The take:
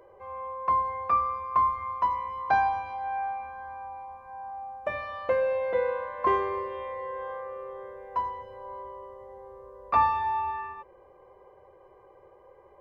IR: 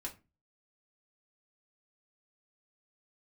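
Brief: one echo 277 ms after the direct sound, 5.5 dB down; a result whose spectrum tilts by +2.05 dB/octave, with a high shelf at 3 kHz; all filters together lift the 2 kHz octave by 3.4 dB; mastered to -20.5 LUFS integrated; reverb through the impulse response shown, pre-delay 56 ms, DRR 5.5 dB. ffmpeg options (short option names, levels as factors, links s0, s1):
-filter_complex "[0:a]equalizer=f=2000:t=o:g=5.5,highshelf=f=3000:g=-3.5,aecho=1:1:277:0.531,asplit=2[s0][s1];[1:a]atrim=start_sample=2205,adelay=56[s2];[s1][s2]afir=irnorm=-1:irlink=0,volume=0.668[s3];[s0][s3]amix=inputs=2:normalize=0,volume=2"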